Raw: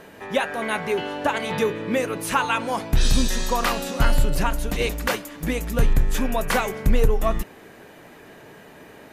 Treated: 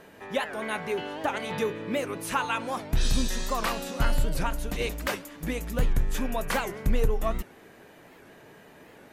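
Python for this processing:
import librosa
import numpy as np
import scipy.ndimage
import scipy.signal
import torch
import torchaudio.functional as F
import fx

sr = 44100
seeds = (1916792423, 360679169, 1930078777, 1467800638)

y = fx.record_warp(x, sr, rpm=78.0, depth_cents=160.0)
y = y * 10.0 ** (-6.0 / 20.0)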